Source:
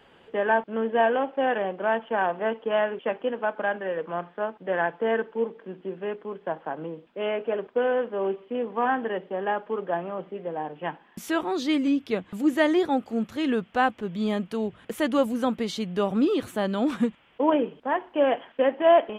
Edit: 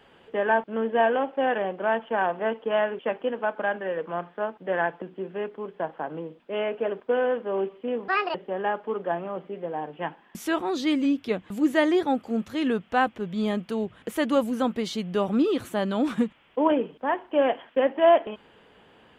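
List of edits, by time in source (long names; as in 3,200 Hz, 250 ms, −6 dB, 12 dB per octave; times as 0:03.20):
0:05.02–0:05.69: remove
0:08.75–0:09.17: play speed 158%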